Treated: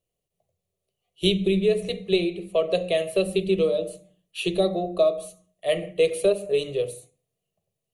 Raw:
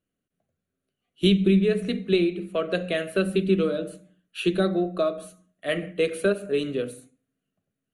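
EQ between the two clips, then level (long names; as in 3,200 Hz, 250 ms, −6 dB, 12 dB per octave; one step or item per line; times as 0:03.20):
mains-hum notches 50/100/150/200/250/300/350 Hz
phaser with its sweep stopped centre 620 Hz, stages 4
+5.0 dB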